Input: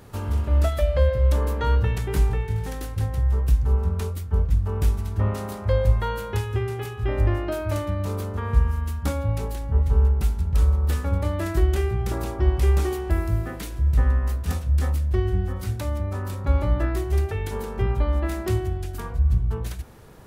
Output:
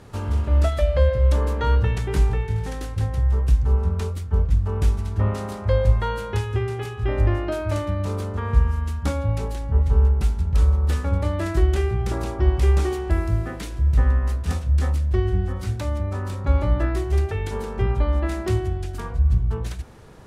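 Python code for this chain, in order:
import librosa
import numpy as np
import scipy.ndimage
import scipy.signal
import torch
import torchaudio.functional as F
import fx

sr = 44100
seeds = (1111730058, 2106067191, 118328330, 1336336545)

y = scipy.signal.sosfilt(scipy.signal.butter(2, 9000.0, 'lowpass', fs=sr, output='sos'), x)
y = F.gain(torch.from_numpy(y), 1.5).numpy()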